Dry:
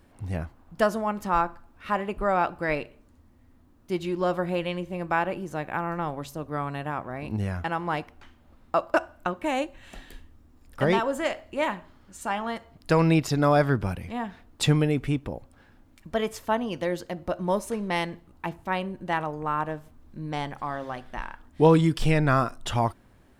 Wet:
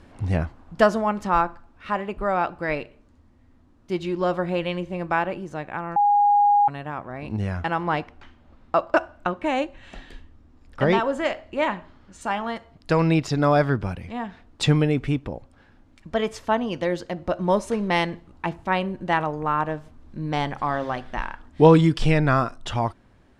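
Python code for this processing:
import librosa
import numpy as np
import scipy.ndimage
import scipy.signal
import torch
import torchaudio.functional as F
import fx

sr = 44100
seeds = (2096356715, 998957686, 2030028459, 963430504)

y = fx.high_shelf(x, sr, hz=8200.0, db=-8.0, at=(7.83, 12.21))
y = fx.edit(y, sr, fx.bleep(start_s=5.96, length_s=0.72, hz=820.0, db=-13.0), tone=tone)
y = scipy.signal.sosfilt(scipy.signal.butter(2, 6700.0, 'lowpass', fs=sr, output='sos'), y)
y = fx.rider(y, sr, range_db=10, speed_s=2.0)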